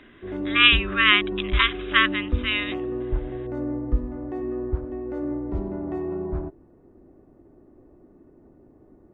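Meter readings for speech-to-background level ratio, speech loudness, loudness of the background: 10.0 dB, -20.0 LUFS, -30.0 LUFS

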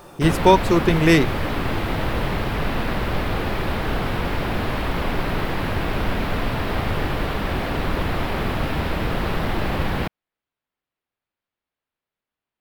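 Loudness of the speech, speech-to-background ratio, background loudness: -18.0 LUFS, 7.0 dB, -25.0 LUFS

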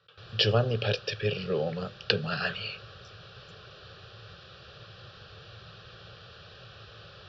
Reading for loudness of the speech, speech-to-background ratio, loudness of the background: -29.5 LUFS, 18.5 dB, -48.0 LUFS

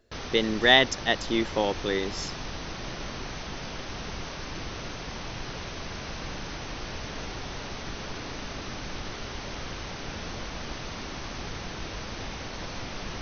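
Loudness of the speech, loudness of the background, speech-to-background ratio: -24.0 LUFS, -36.5 LUFS, 12.5 dB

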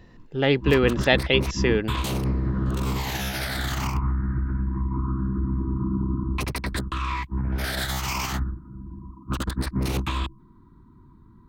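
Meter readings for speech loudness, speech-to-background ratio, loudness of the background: -22.0 LUFS, 5.5 dB, -27.5 LUFS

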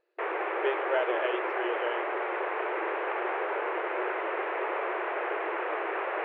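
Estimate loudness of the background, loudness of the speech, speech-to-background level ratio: -31.5 LUFS, -33.0 LUFS, -1.5 dB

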